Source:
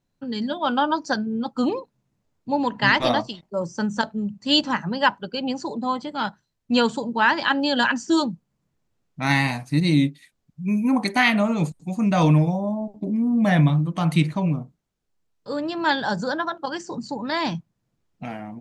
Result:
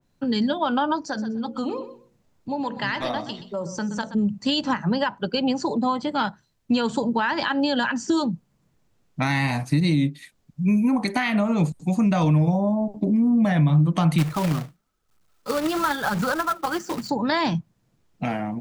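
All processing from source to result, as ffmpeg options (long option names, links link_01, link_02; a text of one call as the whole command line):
ffmpeg -i in.wav -filter_complex "[0:a]asettb=1/sr,asplit=3[link_01][link_02][link_03];[link_01]atrim=end=1.044[link_04];[link_02]atrim=start=1.04:end=4.15,asetpts=PTS-STARTPTS,afade=type=in:duration=0.004:curve=qsin,afade=type=out:start_time=3.106:duration=0.004:curve=qsin,bandreject=frequency=60:width_type=h:width=6,bandreject=frequency=120:width_type=h:width=6,bandreject=frequency=180:width_type=h:width=6,bandreject=frequency=240:width_type=h:width=6,bandreject=frequency=300:width_type=h:width=6,bandreject=frequency=360:width_type=h:width=6,bandreject=frequency=420:width_type=h:width=6,bandreject=frequency=480:width_type=h:width=6,bandreject=frequency=540:width_type=h:width=6,acompressor=threshold=-40dB:ratio=2:attack=3.2:release=140:knee=1:detection=peak,aecho=1:1:125|250:0.211|0.0402,atrim=end_sample=137151[link_05];[link_03]atrim=start=4.146[link_06];[link_04][link_05]acrossfade=duration=0.004:curve1=hsin:curve2=qsin[link_07];[link_07][link_06]acrossfade=duration=0.004:curve1=qsin:curve2=hsin,asettb=1/sr,asplit=3[link_08][link_09][link_10];[link_08]atrim=end=14.184[link_11];[link_09]atrim=start=14.18:end=17.1,asetpts=PTS-STARTPTS,afade=type=in:duration=0.004:curve=qsin,afade=type=out:start_time=2.916:duration=0.004:curve=qsin,equalizer=frequency=1300:width=5.9:gain=14,flanger=delay=0:depth=6.6:regen=29:speed=1:shape=triangular,acrusher=bits=2:mode=log:mix=0:aa=0.000001[link_12];[link_10]atrim=start=17.096[link_13];[link_11][link_12]acrossfade=duration=0.004:curve1=hsin:curve2=qsin[link_14];[link_14][link_13]acrossfade=duration=0.004:curve1=qsin:curve2=hsin,alimiter=limit=-15.5dB:level=0:latency=1:release=147,acrossover=split=130[link_15][link_16];[link_16]acompressor=threshold=-29dB:ratio=2.5[link_17];[link_15][link_17]amix=inputs=2:normalize=0,adynamicequalizer=threshold=0.00794:dfrequency=2200:dqfactor=0.7:tfrequency=2200:tqfactor=0.7:attack=5:release=100:ratio=0.375:range=2:mode=cutabove:tftype=highshelf,volume=7.5dB" out.wav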